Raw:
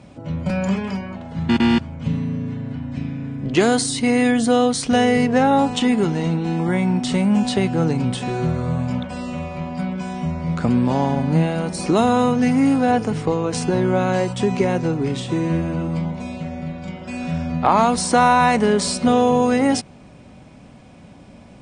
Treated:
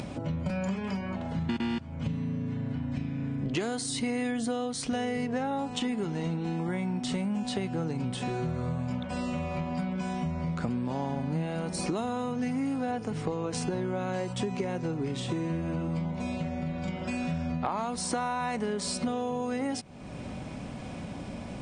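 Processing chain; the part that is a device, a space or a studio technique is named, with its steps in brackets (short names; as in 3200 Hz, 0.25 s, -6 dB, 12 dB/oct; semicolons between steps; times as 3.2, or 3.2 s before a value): upward and downward compression (upward compressor, threshold -31 dBFS; compressor 6:1, threshold -29 dBFS, peak gain reduction 17 dB)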